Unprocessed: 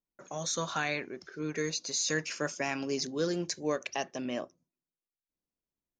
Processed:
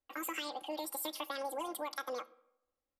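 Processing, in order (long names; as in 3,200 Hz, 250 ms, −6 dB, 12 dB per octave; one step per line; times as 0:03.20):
high-shelf EQ 3,300 Hz −9.5 dB
comb filter 7.4 ms, depth 73%
downward compressor, threshold −37 dBFS, peak gain reduction 12.5 dB
on a send at −21 dB: convolution reverb RT60 1.6 s, pre-delay 45 ms
on the sum: wrong playback speed 7.5 ips tape played at 15 ips
level +1 dB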